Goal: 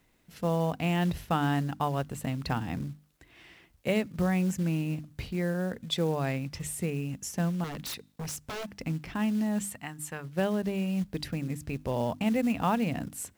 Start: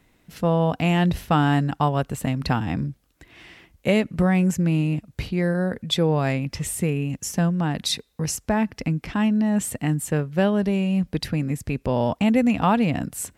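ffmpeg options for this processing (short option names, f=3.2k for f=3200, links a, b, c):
-filter_complex "[0:a]asplit=3[a][b][c];[a]afade=t=out:st=9.68:d=0.02[d];[b]lowshelf=f=660:t=q:w=1.5:g=-8.5,afade=t=in:st=9.68:d=0.02,afade=t=out:st=10.23:d=0.02[e];[c]afade=t=in:st=10.23:d=0.02[f];[d][e][f]amix=inputs=3:normalize=0,bandreject=f=50:t=h:w=6,bandreject=f=100:t=h:w=6,bandreject=f=150:t=h:w=6,bandreject=f=200:t=h:w=6,bandreject=f=250:t=h:w=6,bandreject=f=300:t=h:w=6,acrusher=bits=6:mode=log:mix=0:aa=0.000001,asettb=1/sr,asplit=3[g][h][i];[g]atrim=end=7.644[j];[h]atrim=start=7.64:end=8.71,asetpts=PTS-STARTPTS,afade=t=in:d=0.004:c=qsin,afade=t=out:st=1.066:d=0.004:c=qsin,aeval=exprs='0.0631*(abs(mod(val(0)/0.0631+3,4)-2)-1)':c=same[k];[i]atrim=start=8.706[l];[j][k]acrossfade=d=0.004:c1=hsin:c2=qsin[m];[m][l]acrossfade=d=0.004:c1=qsin:c2=hsin,acrusher=bits=10:mix=0:aa=0.000001,volume=-7.5dB"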